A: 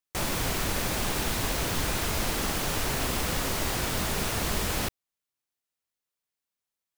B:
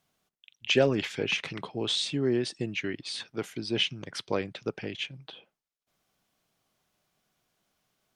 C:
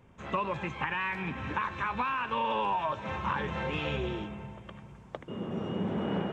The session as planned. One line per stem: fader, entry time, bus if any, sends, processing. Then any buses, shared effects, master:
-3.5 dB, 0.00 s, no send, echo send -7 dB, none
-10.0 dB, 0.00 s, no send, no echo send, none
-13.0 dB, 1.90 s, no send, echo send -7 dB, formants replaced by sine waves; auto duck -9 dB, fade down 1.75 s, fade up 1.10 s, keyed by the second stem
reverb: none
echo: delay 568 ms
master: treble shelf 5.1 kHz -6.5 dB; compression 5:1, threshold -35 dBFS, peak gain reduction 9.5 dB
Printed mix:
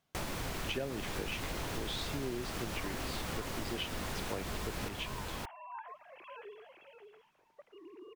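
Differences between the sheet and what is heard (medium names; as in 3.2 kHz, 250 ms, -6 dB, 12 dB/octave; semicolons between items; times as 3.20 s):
stem B -10.0 dB -> -2.0 dB; stem C: entry 1.90 s -> 2.45 s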